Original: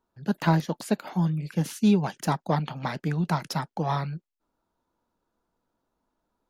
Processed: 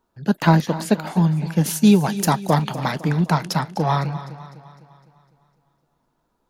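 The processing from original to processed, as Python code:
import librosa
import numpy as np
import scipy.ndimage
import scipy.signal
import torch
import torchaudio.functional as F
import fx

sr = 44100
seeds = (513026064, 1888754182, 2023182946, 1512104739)

y = fx.high_shelf(x, sr, hz=7600.0, db=12.0, at=(1.66, 2.92))
y = y + 10.0 ** (-21.5 / 20.0) * np.pad(y, (int(289 * sr / 1000.0), 0))[:len(y)]
y = fx.echo_warbled(y, sr, ms=253, feedback_pct=52, rate_hz=2.8, cents=50, wet_db=-15)
y = y * librosa.db_to_amplitude(7.0)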